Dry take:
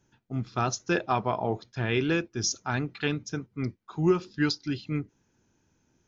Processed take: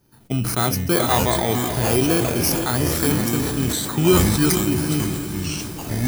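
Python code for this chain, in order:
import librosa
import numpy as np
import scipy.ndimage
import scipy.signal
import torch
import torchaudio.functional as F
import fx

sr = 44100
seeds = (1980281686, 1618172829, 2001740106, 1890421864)

p1 = fx.bit_reversed(x, sr, seeds[0], block=16)
p2 = fx.recorder_agc(p1, sr, target_db=-20.5, rise_db_per_s=34.0, max_gain_db=30)
p3 = p2 + fx.echo_diffused(p2, sr, ms=464, feedback_pct=48, wet_db=-9.0, dry=0)
p4 = fx.echo_pitch(p3, sr, ms=287, semitones=-6, count=3, db_per_echo=-6.0)
p5 = fx.sustainer(p4, sr, db_per_s=30.0)
y = p5 * librosa.db_to_amplitude(6.0)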